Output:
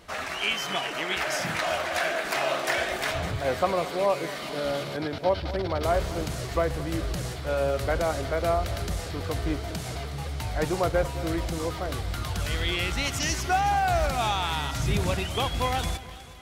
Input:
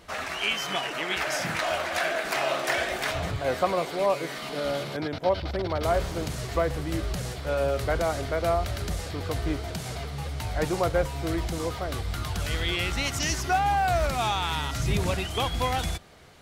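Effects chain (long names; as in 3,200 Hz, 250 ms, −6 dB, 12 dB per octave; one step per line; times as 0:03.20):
echo with a time of its own for lows and highs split 1,500 Hz, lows 220 ms, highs 366 ms, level −15.5 dB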